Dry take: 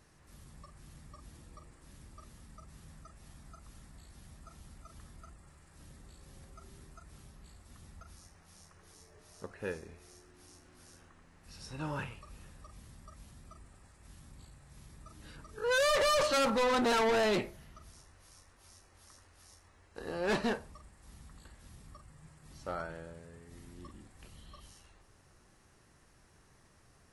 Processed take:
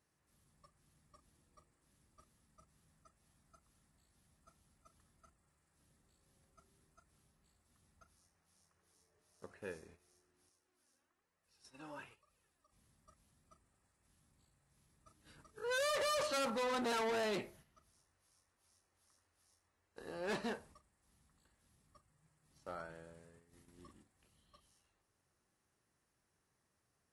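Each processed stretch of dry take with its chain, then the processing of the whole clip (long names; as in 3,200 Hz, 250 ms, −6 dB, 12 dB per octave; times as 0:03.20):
0:10.49–0:12.72: low-shelf EQ 150 Hz −10.5 dB + flanger 1.1 Hz, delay 1.5 ms, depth 2.4 ms, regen +24%
whole clip: high-pass filter 110 Hz 6 dB per octave; noise gate −53 dBFS, range −9 dB; parametric band 11,000 Hz +3.5 dB 0.91 octaves; level −8 dB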